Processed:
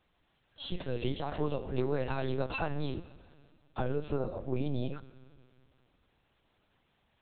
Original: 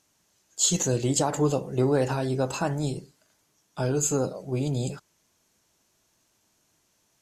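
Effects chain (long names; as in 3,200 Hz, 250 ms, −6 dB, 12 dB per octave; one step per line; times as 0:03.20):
0:00.81–0:02.95: high-shelf EQ 2,100 Hz +9 dB
downward compressor 6 to 1, threshold −28 dBFS, peak gain reduction 14 dB
four-comb reverb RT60 2.3 s, combs from 28 ms, DRR 15.5 dB
linear-prediction vocoder at 8 kHz pitch kept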